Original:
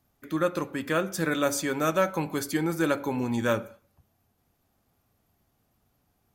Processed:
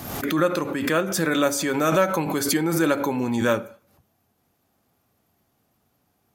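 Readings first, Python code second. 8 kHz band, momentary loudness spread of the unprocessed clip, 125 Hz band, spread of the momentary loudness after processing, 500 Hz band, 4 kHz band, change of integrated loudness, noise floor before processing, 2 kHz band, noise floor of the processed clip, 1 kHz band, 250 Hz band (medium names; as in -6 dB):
+7.0 dB, 5 LU, +4.0 dB, 4 LU, +4.5 dB, +7.0 dB, +5.0 dB, -73 dBFS, +4.5 dB, -70 dBFS, +5.0 dB, +5.5 dB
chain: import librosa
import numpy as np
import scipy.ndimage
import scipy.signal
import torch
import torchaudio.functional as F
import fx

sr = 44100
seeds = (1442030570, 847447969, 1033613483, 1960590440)

y = fx.highpass(x, sr, hz=240.0, slope=6)
y = fx.low_shelf(y, sr, hz=340.0, db=4.5)
y = fx.pre_swell(y, sr, db_per_s=48.0)
y = F.gain(torch.from_numpy(y), 3.5).numpy()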